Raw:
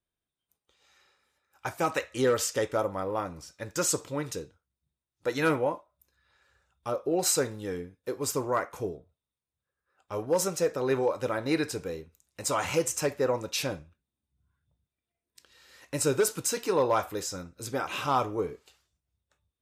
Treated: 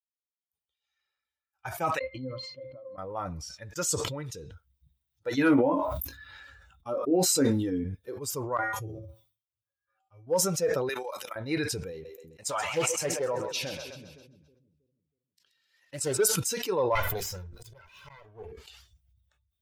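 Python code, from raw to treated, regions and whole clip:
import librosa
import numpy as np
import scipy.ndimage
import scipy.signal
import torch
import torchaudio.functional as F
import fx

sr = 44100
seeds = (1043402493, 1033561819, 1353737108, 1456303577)

y = fx.chain(x, sr, fx.highpass(hz=110.0, slope=12),
    fx.peak_eq(hz=3500.0, db=12.0, octaves=0.73),
    fx.octave_resonator(note='C', decay_s=0.16), at=(1.99, 2.98))
y = fx.chain(y, sr, fx.peak_eq(hz=280.0, db=14.0, octaves=0.32),
    fx.doubler(ms=22.0, db=-7.0),
    fx.sustainer(db_per_s=100.0), at=(5.37, 7.84))
y = fx.chain(y, sr, fx.highpass(hz=53.0, slope=12),
    fx.comb_fb(f0_hz=110.0, decay_s=0.32, harmonics='odd', damping=0.0, mix_pct=90),
    fx.sustainer(db_per_s=110.0), at=(8.57, 10.27))
y = fx.chain(y, sr, fx.highpass(hz=150.0, slope=12),
    fx.tilt_eq(slope=4.0),
    fx.level_steps(step_db=15), at=(10.89, 11.36))
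y = fx.chain(y, sr, fx.highpass(hz=190.0, slope=6),
    fx.echo_split(split_hz=340.0, low_ms=320, high_ms=129, feedback_pct=52, wet_db=-8),
    fx.doppler_dist(depth_ms=0.22), at=(11.92, 16.19))
y = fx.chain(y, sr, fx.lower_of_two(delay_ms=2.0),
    fx.hum_notches(base_hz=50, count=9),
    fx.auto_swell(attack_ms=580.0), at=(16.95, 18.52))
y = fx.bin_expand(y, sr, power=1.5)
y = fx.sustainer(y, sr, db_per_s=34.0)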